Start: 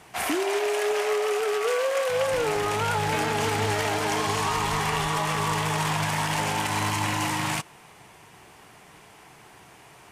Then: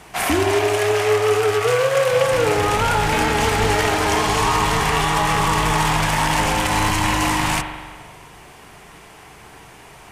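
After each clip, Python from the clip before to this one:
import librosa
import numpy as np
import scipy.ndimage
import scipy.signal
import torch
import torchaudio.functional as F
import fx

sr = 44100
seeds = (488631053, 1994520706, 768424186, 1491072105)

y = fx.octave_divider(x, sr, octaves=2, level_db=-3.0)
y = fx.rev_spring(y, sr, rt60_s=1.5, pass_ms=(42,), chirp_ms=75, drr_db=6.5)
y = y * librosa.db_to_amplitude(6.5)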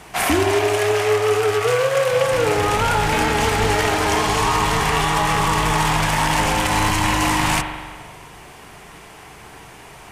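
y = fx.rider(x, sr, range_db=10, speed_s=0.5)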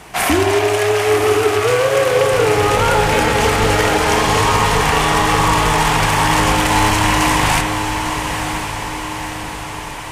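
y = fx.echo_diffused(x, sr, ms=994, feedback_pct=59, wet_db=-7.0)
y = y * librosa.db_to_amplitude(3.0)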